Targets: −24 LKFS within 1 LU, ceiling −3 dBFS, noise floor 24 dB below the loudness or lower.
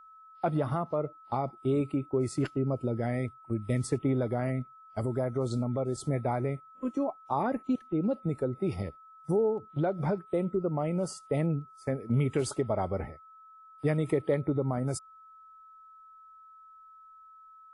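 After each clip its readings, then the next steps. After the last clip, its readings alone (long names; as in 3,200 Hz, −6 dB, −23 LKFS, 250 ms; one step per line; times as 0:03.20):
interfering tone 1,300 Hz; level of the tone −51 dBFS; integrated loudness −31.5 LKFS; sample peak −16.0 dBFS; target loudness −24.0 LKFS
→ notch filter 1,300 Hz, Q 30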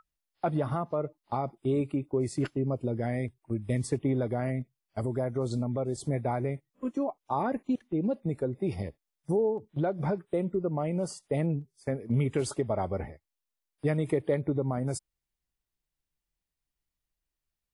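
interfering tone none found; integrated loudness −31.5 LKFS; sample peak −16.0 dBFS; target loudness −24.0 LKFS
→ level +7.5 dB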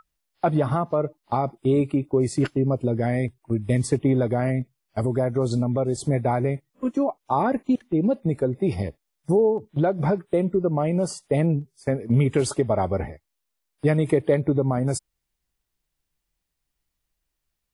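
integrated loudness −24.0 LKFS; sample peak −8.5 dBFS; background noise floor −80 dBFS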